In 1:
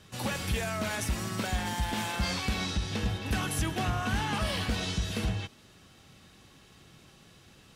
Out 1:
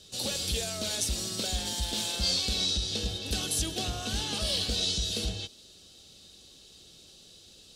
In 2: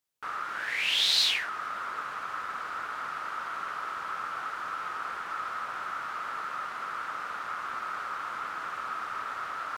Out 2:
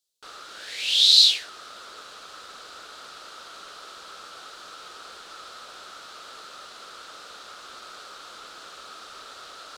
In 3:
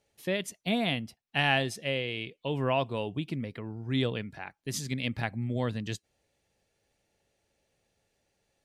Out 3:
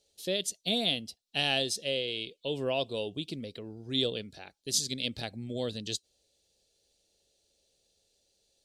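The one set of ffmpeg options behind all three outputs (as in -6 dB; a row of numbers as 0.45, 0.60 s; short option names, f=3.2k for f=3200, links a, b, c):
-af "equalizer=f=125:t=o:w=1:g=-9,equalizer=f=250:t=o:w=1:g=-3,equalizer=f=500:t=o:w=1:g=4,equalizer=f=1k:t=o:w=1:g=-11,equalizer=f=2k:t=o:w=1:g=-11,equalizer=f=4k:t=o:w=1:g=12,equalizer=f=8k:t=o:w=1:g=6"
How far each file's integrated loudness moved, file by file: +2.0, +15.0, -0.5 LU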